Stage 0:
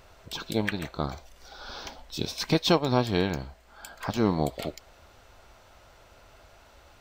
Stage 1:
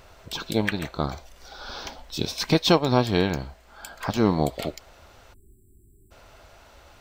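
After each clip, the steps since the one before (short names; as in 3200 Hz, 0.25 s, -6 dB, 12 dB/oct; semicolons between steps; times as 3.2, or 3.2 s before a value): crackle 130/s -61 dBFS; spectral delete 5.33–6.11, 430–7400 Hz; gain +3.5 dB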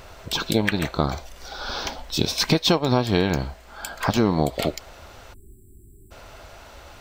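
compressor 4:1, threshold -23 dBFS, peak gain reduction 10 dB; gain +7 dB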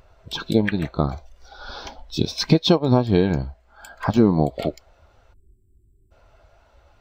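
spectral expander 1.5:1; gain +2 dB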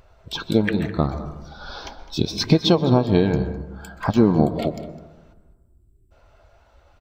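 echo 0.207 s -18 dB; reverb RT60 1.2 s, pre-delay 0.121 s, DRR 12 dB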